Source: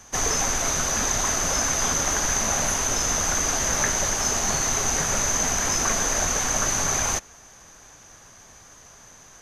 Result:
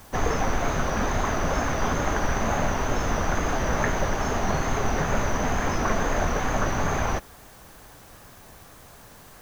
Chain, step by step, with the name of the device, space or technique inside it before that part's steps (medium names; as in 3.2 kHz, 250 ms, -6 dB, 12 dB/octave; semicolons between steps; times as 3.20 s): cassette deck with a dirty head (tape spacing loss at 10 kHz 36 dB; wow and flutter; white noise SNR 28 dB); trim +5.5 dB